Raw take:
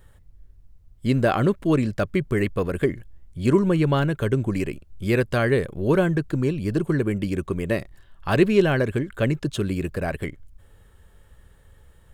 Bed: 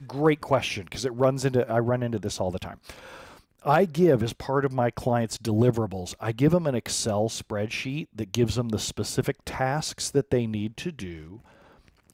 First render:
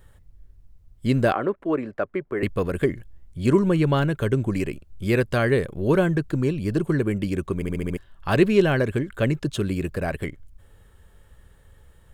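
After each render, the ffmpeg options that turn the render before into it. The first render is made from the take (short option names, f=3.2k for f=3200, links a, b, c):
-filter_complex "[0:a]asettb=1/sr,asplit=3[a][b][c];[a]atrim=end=1.324[d];[b]atrim=start=1.32:end=2.43,asetpts=PTS-STARTPTS,afade=t=in:d=0.004:c=qsin,afade=t=out:st=1.106:d=0.004:c=qsin,acrossover=split=290 2100:gain=0.126 1 0.0891[e][f][g];[e][f][g]amix=inputs=3:normalize=0[h];[c]atrim=start=2.426[i];[d][h]acrossfade=d=0.004:c1=hsin:c2=qsin[j];[j][i]acrossfade=d=0.004:c1=qsin:c2=hsin,asplit=7[k][l][m][n][o][p][q];[k]atrim=end=7.622[r];[l]atrim=start=7.548:end=7.622[s];[m]atrim=start=7.548:end=7.622[t];[n]atrim=start=7.548:end=7.622[u];[o]atrim=start=7.548:end=7.622[v];[p]atrim=start=7.548:end=7.622[w];[q]atrim=start=7.968[x];[r][s]acrossfade=d=0.004:c1=hsin:c2=hsin[y];[y][t]acrossfade=d=0.004:c1=hsin:c2=hsin[z];[z][u]acrossfade=d=0.004:c1=hsin:c2=hsin[aa];[aa][v]acrossfade=d=0.004:c1=hsin:c2=hsin[ab];[ab][w]acrossfade=d=0.004:c1=hsin:c2=hsin[ac];[ac][x]acrossfade=d=0.004:c1=hsin:c2=hsin"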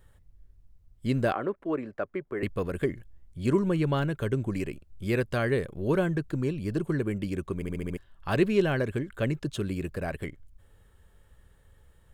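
-af "volume=-6dB"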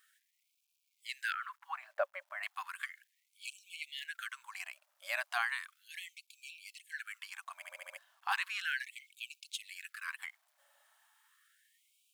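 -af "acrusher=bits=11:mix=0:aa=0.000001,afftfilt=real='re*gte(b*sr/1024,540*pow(2300/540,0.5+0.5*sin(2*PI*0.35*pts/sr)))':imag='im*gte(b*sr/1024,540*pow(2300/540,0.5+0.5*sin(2*PI*0.35*pts/sr)))':win_size=1024:overlap=0.75"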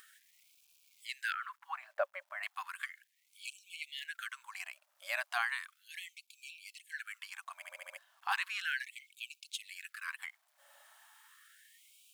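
-af "acompressor=mode=upward:threshold=-52dB:ratio=2.5"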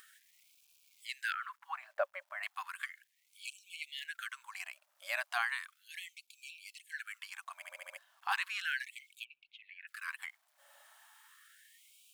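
-filter_complex "[0:a]asplit=3[a][b][c];[a]afade=t=out:st=9.23:d=0.02[d];[b]lowpass=f=2.3k:w=0.5412,lowpass=f=2.3k:w=1.3066,afade=t=in:st=9.23:d=0.02,afade=t=out:st=9.87:d=0.02[e];[c]afade=t=in:st=9.87:d=0.02[f];[d][e][f]amix=inputs=3:normalize=0"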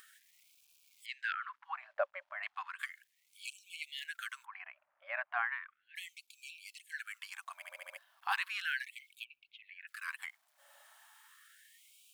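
-filter_complex "[0:a]asettb=1/sr,asplit=3[a][b][c];[a]atrim=end=1.064[d];[b]atrim=start=1.06:end=2.79,asetpts=PTS-STARTPTS,afade=t=in:d=0.004:c=qsin,afade=t=out:st=1.726:d=0.004:c=qsin,lowpass=3.3k[e];[c]atrim=start=2.786[f];[d][e]acrossfade=d=0.004:c1=hsin:c2=qsin[g];[g][f]acrossfade=d=0.004:c1=qsin:c2=hsin,asplit=3[h][i][j];[h]afade=t=out:st=4.44:d=0.02[k];[i]lowpass=f=2.1k:w=0.5412,lowpass=f=2.1k:w=1.3066,afade=t=in:st=4.44:d=0.02,afade=t=out:st=5.95:d=0.02[l];[j]afade=t=in:st=5.95:d=0.02[m];[k][l][m]amix=inputs=3:normalize=0,asettb=1/sr,asplit=3[n][o][p];[n]atrim=end=7.564[q];[o]atrim=start=7.56:end=9.72,asetpts=PTS-STARTPTS,afade=t=in:d=0.004:c=qsin,afade=t=out:st=2.156:d=0.004:c=qsin,equalizer=f=7.1k:t=o:w=0.67:g=-5.5[r];[p]atrim=start=9.716[s];[q][r]acrossfade=d=0.004:c1=hsin:c2=qsin[t];[t][s]acrossfade=d=0.004:c1=qsin:c2=hsin"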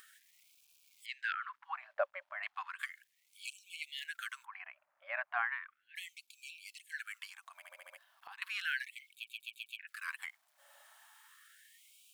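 -filter_complex "[0:a]asettb=1/sr,asplit=3[a][b][c];[a]atrim=end=7.294[d];[b]atrim=start=7.29:end=8.42,asetpts=PTS-STARTPTS,afade=t=in:d=0.004:c=qsin,afade=t=out:st=1.126:d=0.004:c=qsin,acompressor=threshold=-49dB:ratio=6:attack=3.2:release=140:knee=1:detection=peak[e];[c]atrim=start=8.416[f];[d][e]acrossfade=d=0.004:c1=hsin:c2=qsin[g];[g][f]acrossfade=d=0.004:c1=qsin:c2=hsin,asplit=6[h][i][j][k][l][m];[h]atrim=end=9.272[n];[i]atrim=start=9.138:end=9.272[o];[j]atrim=start=9.138:end=9.272[p];[k]atrim=start=9.138:end=9.272[q];[l]atrim=start=9.138:end=9.272[r];[m]atrim=start=9.788[s];[n][o]acrossfade=d=0.004:c1=hsin:c2=hsin[t];[t][p]acrossfade=d=0.004:c1=hsin:c2=hsin[u];[u][q]acrossfade=d=0.004:c1=hsin:c2=hsin[v];[v][r]acrossfade=d=0.004:c1=hsin:c2=hsin[w];[w][s]acrossfade=d=0.004:c1=hsin:c2=hsin"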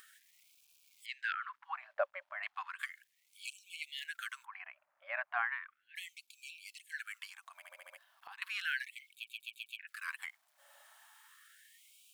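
-af anull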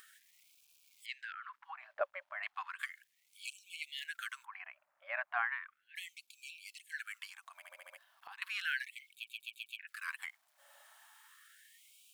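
-filter_complex "[0:a]asettb=1/sr,asplit=3[a][b][c];[a]atrim=end=1.224[d];[b]atrim=start=1.22:end=2.01,asetpts=PTS-STARTPTS,afade=t=in:d=0.004:c=qsin,afade=t=out:st=0.786:d=0.004:c=qsin,acompressor=threshold=-44dB:ratio=3:attack=3.2:release=140:knee=1:detection=peak[e];[c]atrim=start=2.006[f];[d][e]acrossfade=d=0.004:c1=hsin:c2=qsin[g];[g][f]acrossfade=d=0.004:c1=qsin:c2=hsin"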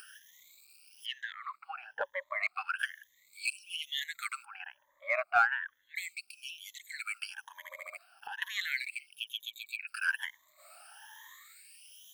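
-filter_complex "[0:a]afftfilt=real='re*pow(10,23/40*sin(2*PI*(1.1*log(max(b,1)*sr/1024/100)/log(2)-(1.1)*(pts-256)/sr)))':imag='im*pow(10,23/40*sin(2*PI*(1.1*log(max(b,1)*sr/1024/100)/log(2)-(1.1)*(pts-256)/sr)))':win_size=1024:overlap=0.75,asplit=2[a][b];[b]asoftclip=type=hard:threshold=-26dB,volume=-10.5dB[c];[a][c]amix=inputs=2:normalize=0"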